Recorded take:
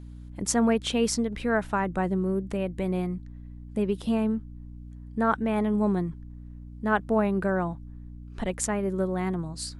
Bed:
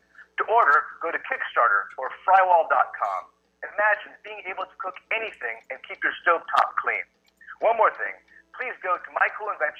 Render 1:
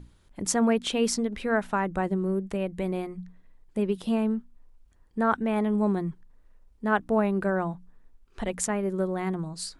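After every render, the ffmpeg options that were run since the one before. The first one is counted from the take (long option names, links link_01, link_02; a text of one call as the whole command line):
ffmpeg -i in.wav -af "bandreject=frequency=60:width_type=h:width=6,bandreject=frequency=120:width_type=h:width=6,bandreject=frequency=180:width_type=h:width=6,bandreject=frequency=240:width_type=h:width=6,bandreject=frequency=300:width_type=h:width=6" out.wav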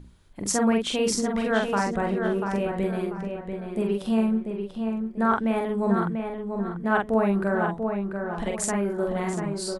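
ffmpeg -i in.wav -filter_complex "[0:a]asplit=2[link_01][link_02];[link_02]adelay=45,volume=-3dB[link_03];[link_01][link_03]amix=inputs=2:normalize=0,asplit=2[link_04][link_05];[link_05]adelay=690,lowpass=frequency=3200:poles=1,volume=-5.5dB,asplit=2[link_06][link_07];[link_07]adelay=690,lowpass=frequency=3200:poles=1,volume=0.34,asplit=2[link_08][link_09];[link_09]adelay=690,lowpass=frequency=3200:poles=1,volume=0.34,asplit=2[link_10][link_11];[link_11]adelay=690,lowpass=frequency=3200:poles=1,volume=0.34[link_12];[link_04][link_06][link_08][link_10][link_12]amix=inputs=5:normalize=0" out.wav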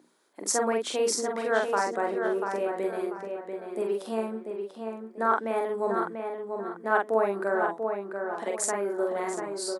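ffmpeg -i in.wav -af "highpass=frequency=320:width=0.5412,highpass=frequency=320:width=1.3066,equalizer=frequency=2900:width=1.9:gain=-8" out.wav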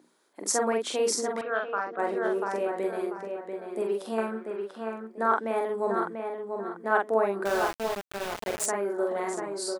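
ffmpeg -i in.wav -filter_complex "[0:a]asettb=1/sr,asplit=3[link_01][link_02][link_03];[link_01]atrim=end=1.414[link_04];[link_02]atrim=start=1.41:end=1.99,asetpts=PTS-STARTPTS,afade=type=in:duration=0.004:curve=qsin,afade=type=out:start_time=0.576:duration=0.004:curve=qsin,highpass=220,equalizer=frequency=230:width_type=q:width=4:gain=-8,equalizer=frequency=400:width_type=q:width=4:gain=-9,equalizer=frequency=580:width_type=q:width=4:gain=-5,equalizer=frequency=890:width_type=q:width=4:gain=-10,equalizer=frequency=1300:width_type=q:width=4:gain=4,equalizer=frequency=2000:width_type=q:width=4:gain=-10,lowpass=frequency=2800:width=0.5412,lowpass=frequency=2800:width=1.3066[link_05];[link_03]atrim=start=1.986[link_06];[link_04][link_05]acrossfade=duration=0.004:curve1=hsin:curve2=qsin[link_07];[link_07][link_06]acrossfade=duration=0.004:curve1=qsin:curve2=hsin,asettb=1/sr,asplit=3[link_08][link_09][link_10];[link_08]atrim=end=4.184[link_11];[link_09]atrim=start=4.18:end=5.07,asetpts=PTS-STARTPTS,afade=type=in:duration=0.004:curve=qsin,afade=type=out:start_time=0.886:duration=0.004:curve=qsin,equalizer=frequency=1500:width_type=o:width=0.83:gain=13.5[link_12];[link_10]atrim=start=5.066[link_13];[link_11][link_12]acrossfade=duration=0.004:curve1=hsin:curve2=qsin[link_14];[link_14][link_13]acrossfade=duration=0.004:curve1=qsin:curve2=hsin,asettb=1/sr,asplit=3[link_15][link_16][link_17];[link_15]atrim=end=7.454[link_18];[link_16]atrim=start=7.45:end=8.66,asetpts=PTS-STARTPTS,afade=type=in:duration=0.004:curve=qsin,afade=type=out:start_time=1.206:duration=0.004:curve=qsin,aeval=exprs='val(0)*gte(abs(val(0)),0.0316)':channel_layout=same[link_19];[link_17]atrim=start=8.656[link_20];[link_18][link_19]acrossfade=duration=0.004:curve1=hsin:curve2=qsin[link_21];[link_21][link_20]acrossfade=duration=0.004:curve1=qsin:curve2=hsin" out.wav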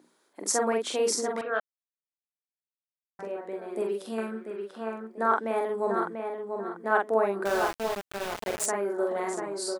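ffmpeg -i in.wav -filter_complex "[0:a]asettb=1/sr,asplit=3[link_01][link_02][link_03];[link_01]atrim=end=3.894[link_04];[link_02]atrim=start=3.89:end=4.73,asetpts=PTS-STARTPTS,afade=type=in:duration=0.004:curve=qsin,afade=type=out:start_time=0.836:duration=0.004:curve=qsin,equalizer=frequency=850:width_type=o:width=1.4:gain=-8[link_05];[link_03]atrim=start=4.726[link_06];[link_04][link_05]acrossfade=duration=0.004:curve1=hsin:curve2=qsin[link_07];[link_07][link_06]acrossfade=duration=0.004:curve1=qsin:curve2=hsin,asplit=3[link_08][link_09][link_10];[link_08]atrim=end=1.6,asetpts=PTS-STARTPTS,afade=type=out:start_time=1.596:duration=0.004:curve=hsin[link_11];[link_09]atrim=start=1.6:end=3.19,asetpts=PTS-STARTPTS,volume=0[link_12];[link_10]atrim=start=3.19,asetpts=PTS-STARTPTS,afade=type=in:duration=0.004:curve=hsin[link_13];[link_11][link_12][link_13]concat=n=3:v=0:a=1" out.wav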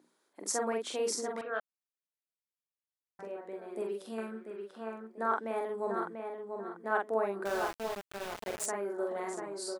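ffmpeg -i in.wav -af "volume=-6.5dB" out.wav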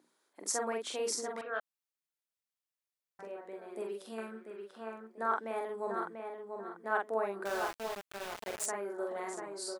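ffmpeg -i in.wav -af "lowshelf=frequency=490:gain=-5.5" out.wav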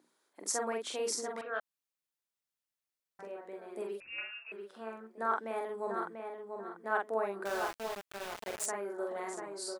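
ffmpeg -i in.wav -filter_complex "[0:a]asettb=1/sr,asplit=3[link_01][link_02][link_03];[link_01]atrim=end=4.004[link_04];[link_02]atrim=start=4:end=4.52,asetpts=PTS-STARTPTS,afade=type=in:duration=0.004:curve=qsin,afade=type=out:start_time=0.516:duration=0.004:curve=qsin,lowpass=frequency=2600:width_type=q:width=0.5098,lowpass=frequency=2600:width_type=q:width=0.6013,lowpass=frequency=2600:width_type=q:width=0.9,lowpass=frequency=2600:width_type=q:width=2.563,afreqshift=-3000[link_05];[link_03]atrim=start=4.516[link_06];[link_04][link_05]acrossfade=duration=0.004:curve1=hsin:curve2=qsin[link_07];[link_07][link_06]acrossfade=duration=0.004:curve1=qsin:curve2=hsin" out.wav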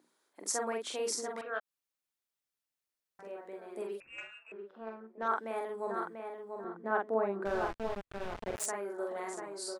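ffmpeg -i in.wav -filter_complex "[0:a]asplit=3[link_01][link_02][link_03];[link_01]afade=type=out:start_time=1.58:duration=0.02[link_04];[link_02]acompressor=threshold=-51dB:ratio=2:attack=3.2:release=140:knee=1:detection=peak,afade=type=in:start_time=1.58:duration=0.02,afade=type=out:start_time=3.24:duration=0.02[link_05];[link_03]afade=type=in:start_time=3.24:duration=0.02[link_06];[link_04][link_05][link_06]amix=inputs=3:normalize=0,asettb=1/sr,asplit=3[link_07][link_08][link_09];[link_07]atrim=end=4.024[link_10];[link_08]atrim=start=4.02:end=5.28,asetpts=PTS-STARTPTS,afade=type=in:duration=0.004:curve=qsin,afade=type=out:start_time=1.256:duration=0.004:curve=qsin,adynamicsmooth=sensitivity=3.5:basefreq=1800[link_11];[link_09]atrim=start=5.276[link_12];[link_10][link_11]acrossfade=duration=0.004:curve1=hsin:curve2=qsin[link_13];[link_13][link_12]acrossfade=duration=0.004:curve1=qsin:curve2=hsin,asettb=1/sr,asplit=3[link_14][link_15][link_16];[link_14]atrim=end=6.644[link_17];[link_15]atrim=start=6.64:end=8.56,asetpts=PTS-STARTPTS,afade=type=in:duration=0.004:curve=qsin,afade=type=out:start_time=1.916:duration=0.004:curve=qsin,aemphasis=mode=reproduction:type=riaa[link_18];[link_16]atrim=start=8.556[link_19];[link_17][link_18]acrossfade=duration=0.004:curve1=hsin:curve2=qsin[link_20];[link_20][link_19]acrossfade=duration=0.004:curve1=qsin:curve2=hsin" out.wav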